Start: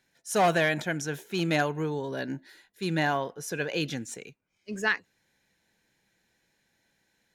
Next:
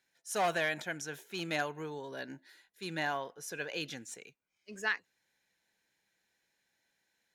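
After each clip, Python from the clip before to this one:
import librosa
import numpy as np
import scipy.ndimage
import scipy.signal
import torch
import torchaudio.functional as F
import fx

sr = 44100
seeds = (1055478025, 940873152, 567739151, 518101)

y = fx.low_shelf(x, sr, hz=360.0, db=-10.5)
y = F.gain(torch.from_numpy(y), -5.5).numpy()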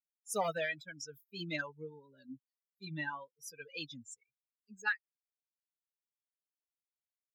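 y = fx.bin_expand(x, sr, power=3.0)
y = fx.notch_comb(y, sr, f0_hz=360.0)
y = fx.vibrato(y, sr, rate_hz=1.6, depth_cents=46.0)
y = F.gain(torch.from_numpy(y), 3.5).numpy()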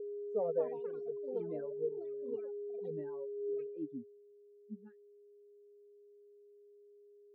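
y = fx.echo_pitch(x, sr, ms=342, semitones=7, count=2, db_per_echo=-3.0)
y = y + 10.0 ** (-43.0 / 20.0) * np.sin(2.0 * np.pi * 410.0 * np.arange(len(y)) / sr)
y = fx.filter_sweep_lowpass(y, sr, from_hz=480.0, to_hz=220.0, start_s=3.34, end_s=4.23, q=7.6)
y = F.gain(torch.from_numpy(y), -7.0).numpy()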